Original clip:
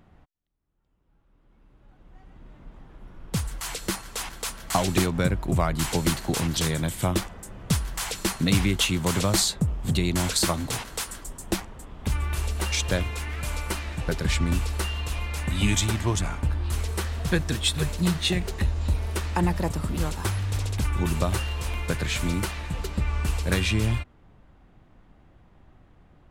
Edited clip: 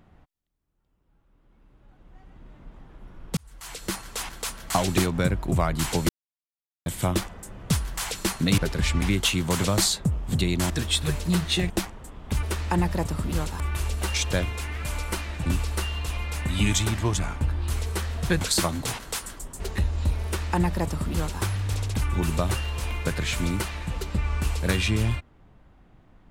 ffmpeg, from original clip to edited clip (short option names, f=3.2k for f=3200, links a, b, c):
-filter_complex "[0:a]asplit=13[a][b][c][d][e][f][g][h][i][j][k][l][m];[a]atrim=end=3.37,asetpts=PTS-STARTPTS,afade=t=out:st=3.366:d=0.004:c=hsin[n];[b]atrim=start=3.37:end=6.09,asetpts=PTS-STARTPTS,afade=t=in:d=0.65,afade=t=out:st=2.716:d=0.004:c=hsin[o];[c]atrim=start=6.09:end=6.86,asetpts=PTS-STARTPTS,volume=0[p];[d]atrim=start=6.86:end=8.582,asetpts=PTS-STARTPTS,afade=t=in:d=0.004:c=hsin[q];[e]atrim=start=14.038:end=14.482[r];[f]atrim=start=8.578:end=10.262[s];[g]atrim=start=17.428:end=18.432[t];[h]atrim=start=11.448:end=12.182[u];[i]atrim=start=19.078:end=20.252[v];[j]atrim=start=12.178:end=14.042[w];[k]atrim=start=14.478:end=17.432[x];[l]atrim=start=10.258:end=11.452[y];[m]atrim=start=18.428[z];[n][o][p][q]concat=n=4:v=0:a=1[aa];[aa][r]acrossfade=d=0.004:c1=hsin:c2=hsin[ab];[ab][s]acrossfade=d=0.004:c1=hsin:c2=hsin[ac];[ac][t]acrossfade=d=0.004:c1=hsin:c2=hsin[ad];[ad][u]acrossfade=d=0.004:c1=hsin:c2=hsin[ae];[ae][v]acrossfade=d=0.004:c1=hsin:c2=hsin[af];[af][w]acrossfade=d=0.004:c1=hsin:c2=hsin[ag];[ag][x]acrossfade=d=0.004:c1=hsin:c2=hsin[ah];[ah][y]acrossfade=d=0.004:c1=hsin:c2=hsin[ai];[ai][z]acrossfade=d=0.004:c1=hsin:c2=hsin"